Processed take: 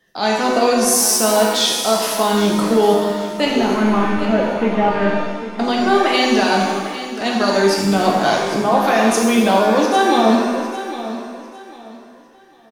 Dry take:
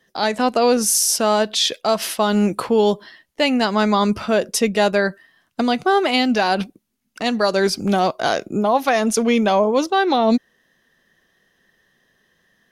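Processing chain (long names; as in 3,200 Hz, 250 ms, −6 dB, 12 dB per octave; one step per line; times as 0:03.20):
0:03.45–0:05.09: variable-slope delta modulation 16 kbit/s
repeating echo 802 ms, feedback 27%, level −12.5 dB
reverb with rising layers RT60 1.2 s, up +7 semitones, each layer −8 dB, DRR −1.5 dB
level −1.5 dB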